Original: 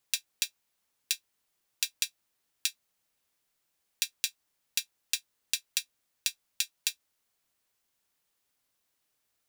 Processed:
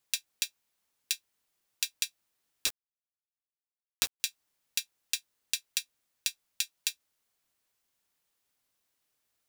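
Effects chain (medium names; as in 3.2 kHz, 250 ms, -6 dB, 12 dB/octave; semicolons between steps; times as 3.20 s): 2.66–4.20 s: companded quantiser 2-bit; trim -1 dB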